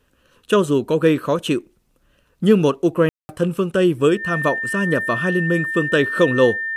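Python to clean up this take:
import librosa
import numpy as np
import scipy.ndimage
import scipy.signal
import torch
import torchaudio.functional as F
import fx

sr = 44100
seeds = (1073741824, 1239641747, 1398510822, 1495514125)

y = fx.notch(x, sr, hz=1800.0, q=30.0)
y = fx.fix_ambience(y, sr, seeds[0], print_start_s=1.79, print_end_s=2.29, start_s=3.09, end_s=3.29)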